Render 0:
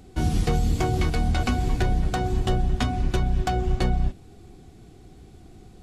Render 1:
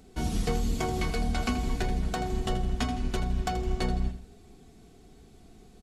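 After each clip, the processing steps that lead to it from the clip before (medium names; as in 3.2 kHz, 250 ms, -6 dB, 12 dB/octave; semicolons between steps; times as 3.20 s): tone controls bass -3 dB, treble +2 dB; comb 4.5 ms, depth 41%; on a send: feedback delay 81 ms, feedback 40%, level -11 dB; on the sum: trim -4.5 dB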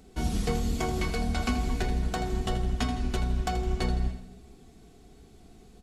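gated-style reverb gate 400 ms falling, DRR 10.5 dB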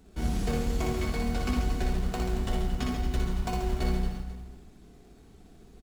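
in parallel at -4 dB: decimation with a swept rate 35×, swing 60% 2.2 Hz; on the sum: reverse bouncing-ball echo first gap 60 ms, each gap 1.25×, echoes 5; trim -6 dB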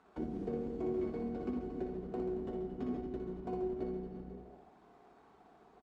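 compression 6:1, threshold -32 dBFS, peak gain reduction 9.5 dB; auto-wah 350–1200 Hz, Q 2.2, down, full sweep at -34 dBFS; trim +7 dB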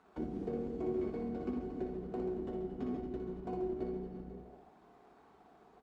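flange 1.7 Hz, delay 9.1 ms, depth 6.6 ms, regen -82%; trim +4.5 dB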